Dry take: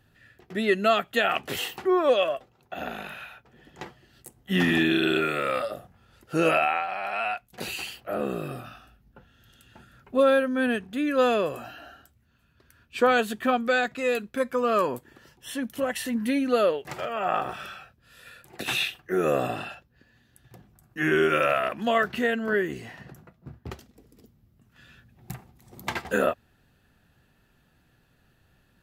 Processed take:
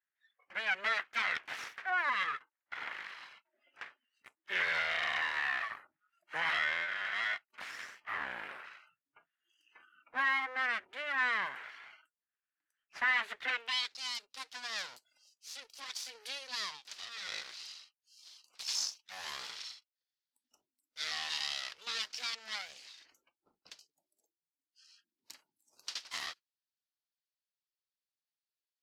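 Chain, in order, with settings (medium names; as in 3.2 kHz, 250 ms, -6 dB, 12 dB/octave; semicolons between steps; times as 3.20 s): full-wave rectifier; spectral noise reduction 24 dB; band-pass sweep 1.8 kHz -> 4.9 kHz, 13.36–13.96 s; in parallel at +3 dB: peak limiter -29 dBFS, peak gain reduction 9 dB; on the sum: trim -4 dB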